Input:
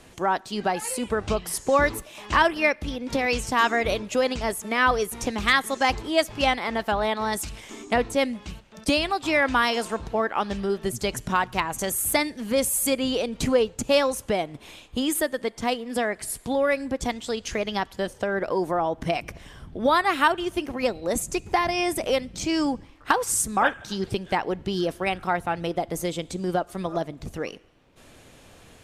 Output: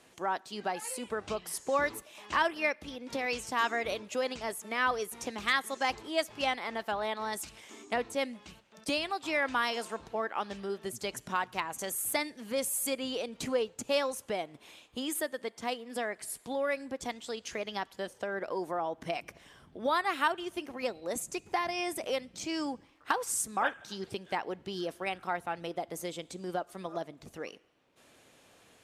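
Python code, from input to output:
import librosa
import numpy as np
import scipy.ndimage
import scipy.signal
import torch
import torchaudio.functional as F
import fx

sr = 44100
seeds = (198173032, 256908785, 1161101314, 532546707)

y = fx.highpass(x, sr, hz=300.0, slope=6)
y = y * 10.0 ** (-8.0 / 20.0)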